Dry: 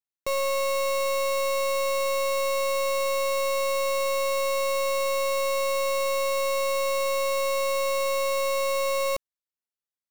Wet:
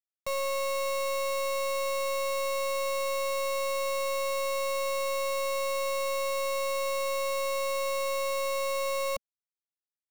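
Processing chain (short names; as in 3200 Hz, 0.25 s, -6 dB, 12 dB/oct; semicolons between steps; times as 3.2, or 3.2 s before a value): crossover distortion -53.5 dBFS; Chebyshev band-stop 210–560 Hz, order 2; short-mantissa float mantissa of 4-bit; gain -3 dB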